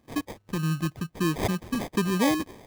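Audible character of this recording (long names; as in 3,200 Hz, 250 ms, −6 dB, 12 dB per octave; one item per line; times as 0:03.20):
phaser sweep stages 2, 3.2 Hz, lowest notch 680–2,500 Hz
aliases and images of a low sample rate 1,400 Hz, jitter 0%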